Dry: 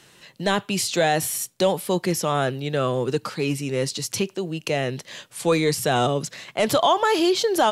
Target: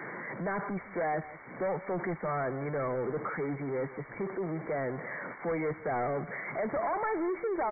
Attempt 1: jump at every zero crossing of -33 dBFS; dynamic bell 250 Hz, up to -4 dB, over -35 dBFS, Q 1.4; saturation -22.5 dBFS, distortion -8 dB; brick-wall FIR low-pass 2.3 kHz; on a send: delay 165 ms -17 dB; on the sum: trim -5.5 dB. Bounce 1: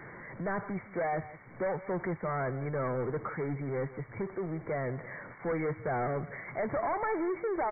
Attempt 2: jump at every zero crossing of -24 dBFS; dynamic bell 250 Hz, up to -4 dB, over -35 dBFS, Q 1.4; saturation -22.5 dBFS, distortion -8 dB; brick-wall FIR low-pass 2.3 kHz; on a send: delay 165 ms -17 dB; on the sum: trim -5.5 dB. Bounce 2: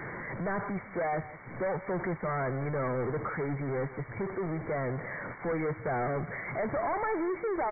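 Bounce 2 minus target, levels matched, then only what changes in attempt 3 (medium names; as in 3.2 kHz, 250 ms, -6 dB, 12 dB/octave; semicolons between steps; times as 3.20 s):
125 Hz band +4.0 dB
add after dynamic bell: high-pass 160 Hz 24 dB/octave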